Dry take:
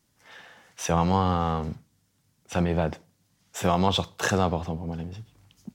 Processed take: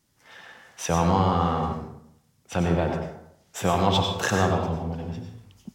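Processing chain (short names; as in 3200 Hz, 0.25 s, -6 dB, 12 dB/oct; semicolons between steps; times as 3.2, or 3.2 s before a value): plate-style reverb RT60 0.71 s, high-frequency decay 0.6×, pre-delay 80 ms, DRR 2 dB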